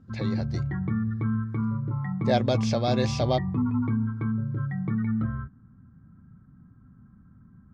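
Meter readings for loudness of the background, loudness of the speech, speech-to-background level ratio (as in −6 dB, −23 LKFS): −28.5 LKFS, −28.5 LKFS, 0.0 dB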